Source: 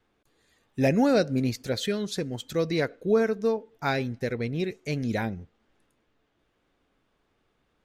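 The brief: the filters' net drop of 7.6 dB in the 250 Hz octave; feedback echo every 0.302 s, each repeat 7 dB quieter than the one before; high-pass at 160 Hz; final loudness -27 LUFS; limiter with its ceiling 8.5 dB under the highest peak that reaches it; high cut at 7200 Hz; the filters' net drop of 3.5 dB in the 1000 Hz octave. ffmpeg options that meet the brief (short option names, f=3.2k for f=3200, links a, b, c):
-af "highpass=160,lowpass=7.2k,equalizer=f=250:t=o:g=-8,equalizer=f=1k:t=o:g=-4.5,alimiter=limit=-22.5dB:level=0:latency=1,aecho=1:1:302|604|906|1208|1510:0.447|0.201|0.0905|0.0407|0.0183,volume=6dB"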